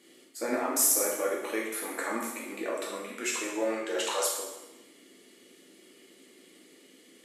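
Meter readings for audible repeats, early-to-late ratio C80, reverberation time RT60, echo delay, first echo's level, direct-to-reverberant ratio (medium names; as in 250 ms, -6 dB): no echo, 5.0 dB, 1.0 s, no echo, no echo, -3.5 dB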